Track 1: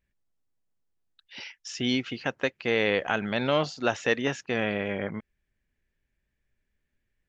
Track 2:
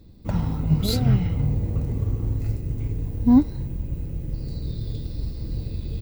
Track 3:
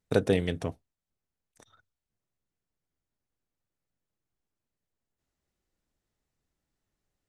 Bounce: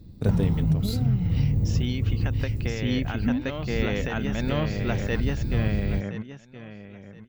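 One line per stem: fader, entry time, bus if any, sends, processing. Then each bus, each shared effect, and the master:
-1.5 dB, 0.00 s, bus A, no send, echo send -5 dB, dry
-2.0 dB, 0.00 s, bus A, no send, no echo send, dry
-8.0 dB, 0.10 s, no bus, no send, no echo send, dry
bus A: 0.0 dB, low shelf 120 Hz -12 dB; compressor 16:1, threshold -30 dBFS, peak gain reduction 16.5 dB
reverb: off
echo: feedback echo 1.022 s, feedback 23%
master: tone controls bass +14 dB, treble +1 dB

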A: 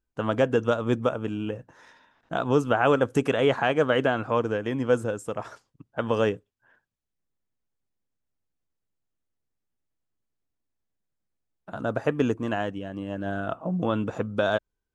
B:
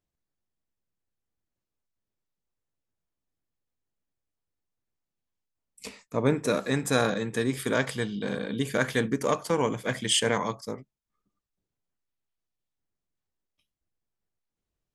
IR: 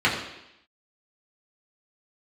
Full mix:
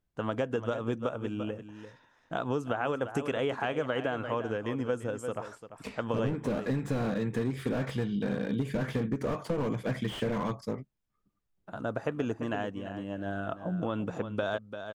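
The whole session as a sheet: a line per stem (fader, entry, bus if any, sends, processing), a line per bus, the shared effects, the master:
-4.5 dB, 0.00 s, no send, echo send -12 dB, dry
+0.5 dB, 0.00 s, no send, no echo send, tone controls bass +5 dB, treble -10 dB; slew limiter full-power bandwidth 31 Hz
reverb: off
echo: echo 0.343 s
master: compressor 10:1, threshold -26 dBFS, peak gain reduction 10 dB

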